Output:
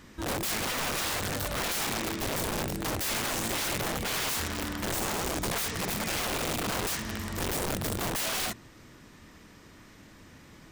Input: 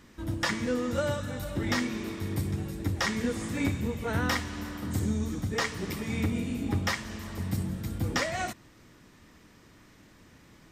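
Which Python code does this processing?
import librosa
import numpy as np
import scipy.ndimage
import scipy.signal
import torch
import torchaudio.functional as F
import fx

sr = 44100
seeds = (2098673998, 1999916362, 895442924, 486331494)

y = fx.hum_notches(x, sr, base_hz=60, count=8)
y = (np.mod(10.0 ** (30.0 / 20.0) * y + 1.0, 2.0) - 1.0) / 10.0 ** (30.0 / 20.0)
y = y * 10.0 ** (4.0 / 20.0)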